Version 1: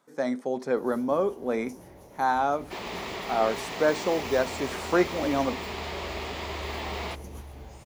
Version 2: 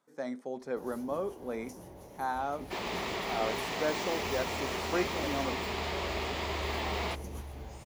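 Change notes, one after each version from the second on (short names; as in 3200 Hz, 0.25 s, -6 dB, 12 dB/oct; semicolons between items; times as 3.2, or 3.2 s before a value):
speech -9.0 dB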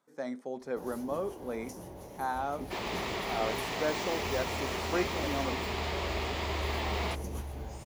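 first sound +3.5 dB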